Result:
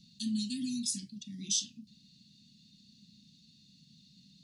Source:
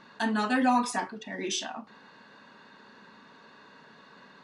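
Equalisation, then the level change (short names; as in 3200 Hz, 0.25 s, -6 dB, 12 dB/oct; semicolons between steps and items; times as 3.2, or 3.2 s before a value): inverse Chebyshev band-stop 540–1400 Hz, stop band 70 dB; +4.0 dB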